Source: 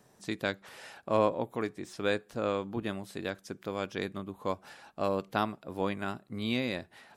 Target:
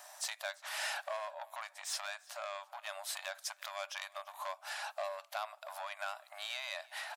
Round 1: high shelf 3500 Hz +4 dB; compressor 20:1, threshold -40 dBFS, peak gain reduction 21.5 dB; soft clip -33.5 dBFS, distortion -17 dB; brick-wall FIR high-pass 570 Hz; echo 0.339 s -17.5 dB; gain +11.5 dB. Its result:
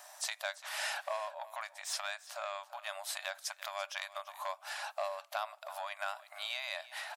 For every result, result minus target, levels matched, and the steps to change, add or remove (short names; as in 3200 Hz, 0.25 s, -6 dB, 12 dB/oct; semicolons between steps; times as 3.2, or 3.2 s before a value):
soft clip: distortion -7 dB; echo-to-direct +6 dB
change: soft clip -40 dBFS, distortion -10 dB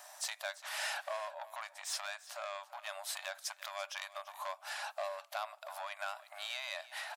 echo-to-direct +6 dB
change: echo 0.339 s -23.5 dB